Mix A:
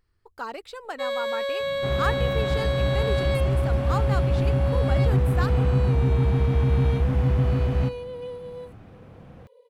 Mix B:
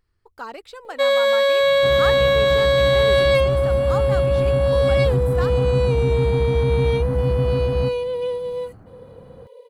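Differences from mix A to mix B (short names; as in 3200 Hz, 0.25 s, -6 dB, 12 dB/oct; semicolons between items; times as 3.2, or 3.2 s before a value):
first sound +11.0 dB; second sound: add LPF 1700 Hz 24 dB/oct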